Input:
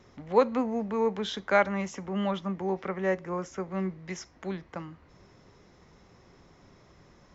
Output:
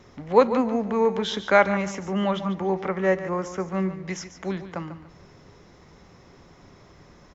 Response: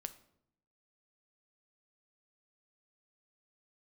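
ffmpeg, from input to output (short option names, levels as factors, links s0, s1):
-filter_complex "[0:a]aecho=1:1:144|288|432:0.251|0.0653|0.017,asplit=2[s0][s1];[1:a]atrim=start_sample=2205[s2];[s1][s2]afir=irnorm=-1:irlink=0,volume=0.75[s3];[s0][s3]amix=inputs=2:normalize=0,volume=1.26"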